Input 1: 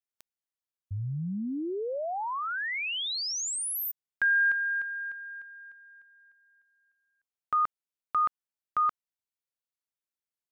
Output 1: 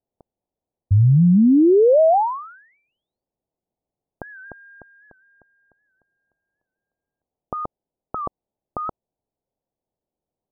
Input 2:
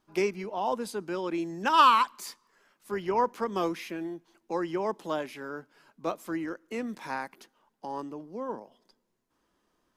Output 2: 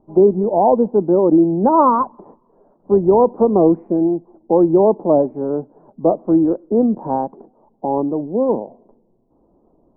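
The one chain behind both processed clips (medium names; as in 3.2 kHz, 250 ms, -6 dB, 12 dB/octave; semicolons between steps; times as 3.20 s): steep low-pass 800 Hz 36 dB/octave; loudness maximiser +22 dB; warped record 78 rpm, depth 100 cents; trim -2.5 dB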